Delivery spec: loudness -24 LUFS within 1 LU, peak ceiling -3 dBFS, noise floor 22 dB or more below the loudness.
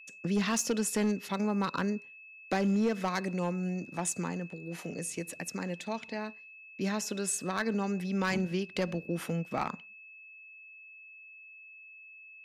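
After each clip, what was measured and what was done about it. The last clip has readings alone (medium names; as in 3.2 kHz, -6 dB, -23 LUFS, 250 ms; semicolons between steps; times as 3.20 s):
clipped samples 0.6%; clipping level -22.5 dBFS; steady tone 2.6 kHz; tone level -49 dBFS; loudness -33.0 LUFS; peak level -22.5 dBFS; loudness target -24.0 LUFS
-> clip repair -22.5 dBFS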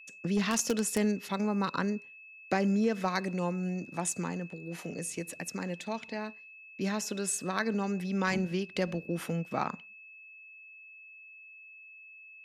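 clipped samples 0.0%; steady tone 2.6 kHz; tone level -49 dBFS
-> band-stop 2.6 kHz, Q 30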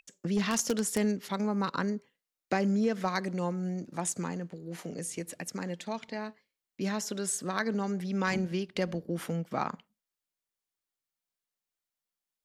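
steady tone not found; loudness -32.5 LUFS; peak level -13.5 dBFS; loudness target -24.0 LUFS
-> trim +8.5 dB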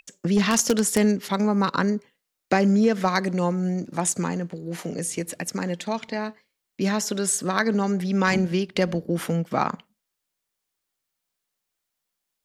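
loudness -24.0 LUFS; peak level -5.0 dBFS; noise floor -82 dBFS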